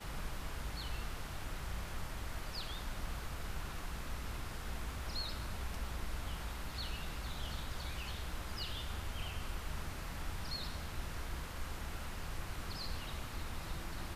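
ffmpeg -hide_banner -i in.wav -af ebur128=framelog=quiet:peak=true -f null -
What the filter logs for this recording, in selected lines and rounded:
Integrated loudness:
  I:         -43.6 LUFS
  Threshold: -53.6 LUFS
Loudness range:
  LRA:         1.3 LU
  Threshold: -63.5 LUFS
  LRA low:   -44.2 LUFS
  LRA high:  -42.9 LUFS
True peak:
  Peak:      -27.6 dBFS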